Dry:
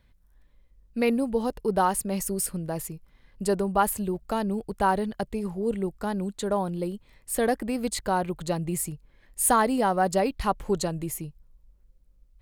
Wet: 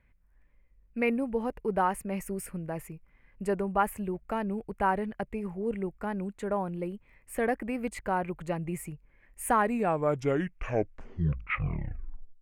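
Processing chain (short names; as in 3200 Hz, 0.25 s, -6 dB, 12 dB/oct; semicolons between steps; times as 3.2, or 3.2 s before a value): tape stop at the end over 2.93 s; resonant high shelf 3000 Hz -8.5 dB, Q 3; gain -4.5 dB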